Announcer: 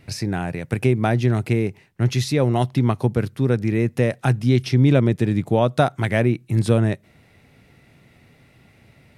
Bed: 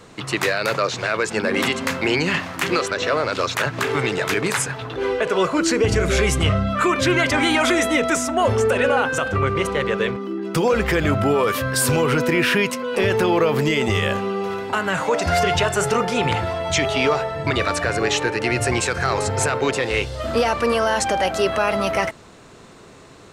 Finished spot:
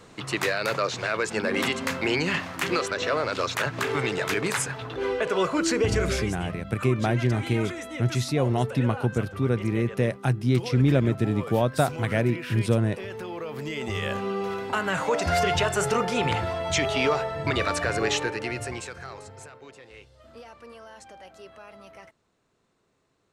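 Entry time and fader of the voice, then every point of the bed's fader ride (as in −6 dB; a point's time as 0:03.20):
6.00 s, −5.0 dB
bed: 0:06.07 −5 dB
0:06.35 −17.5 dB
0:13.40 −17.5 dB
0:14.31 −4.5 dB
0:18.13 −4.5 dB
0:19.59 −26.5 dB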